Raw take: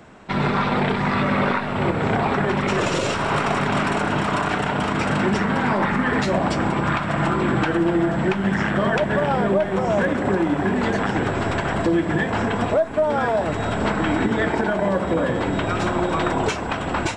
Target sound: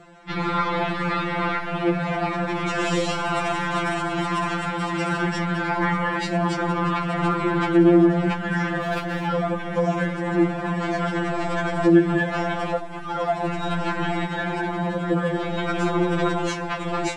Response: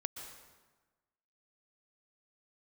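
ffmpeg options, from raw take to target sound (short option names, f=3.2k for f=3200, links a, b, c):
-filter_complex "[0:a]asettb=1/sr,asplit=3[a][b][c];[a]atrim=end=8.814[d];[b]atrim=start=8.81:end=9.27,asetpts=PTS-STARTPTS,afade=t=in:d=0.004:c=qsin,afade=t=out:st=0.456:d=0.004:c=qsin,asoftclip=type=hard:threshold=-19dB[e];[c]atrim=start=9.266[f];[d][e]acrossfade=d=0.004:c1=hsin:c2=qsin[g];[g][f]acrossfade=d=0.004:c1=qsin:c2=hsin,afftfilt=real='re*2.83*eq(mod(b,8),0)':imag='im*2.83*eq(mod(b,8),0)':win_size=2048:overlap=0.75"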